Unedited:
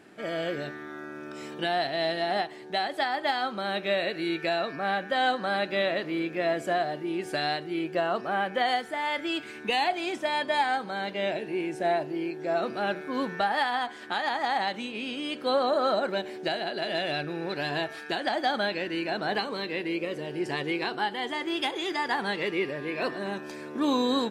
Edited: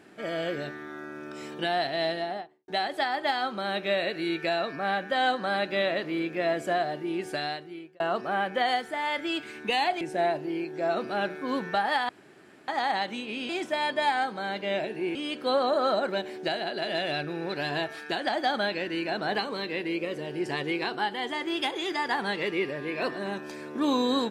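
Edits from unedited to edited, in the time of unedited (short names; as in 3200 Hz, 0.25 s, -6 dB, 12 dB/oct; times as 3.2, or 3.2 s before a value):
2.02–2.68 studio fade out
7.2–8 fade out
10.01–11.67 move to 15.15
13.75–14.34 room tone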